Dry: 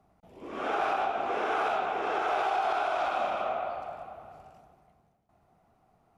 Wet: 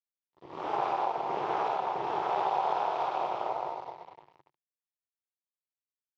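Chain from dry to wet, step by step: AM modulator 220 Hz, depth 60%; crossover distortion -47.5 dBFS; speaker cabinet 110–5600 Hz, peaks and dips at 140 Hz +6 dB, 230 Hz -9 dB, 360 Hz +6 dB, 910 Hz +10 dB, 1500 Hz -8 dB, 2500 Hz -4 dB

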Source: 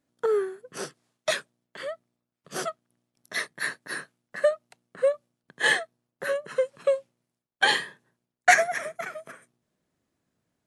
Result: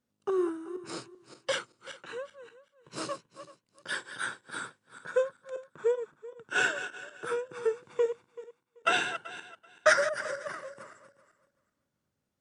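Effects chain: regenerating reverse delay 0.165 s, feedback 44%, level -11 dB; varispeed -14%; gain -5 dB

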